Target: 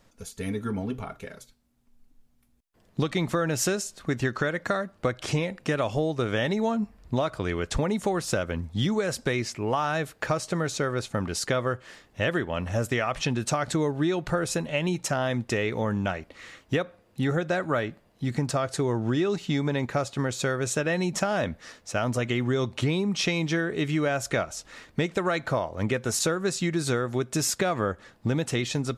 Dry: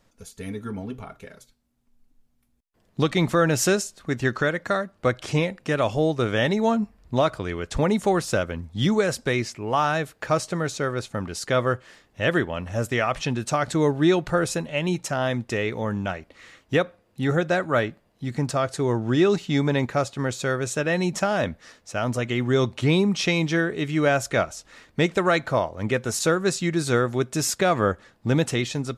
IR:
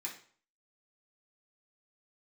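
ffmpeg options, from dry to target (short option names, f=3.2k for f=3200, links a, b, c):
-af "acompressor=threshold=-25dB:ratio=6,volume=2.5dB"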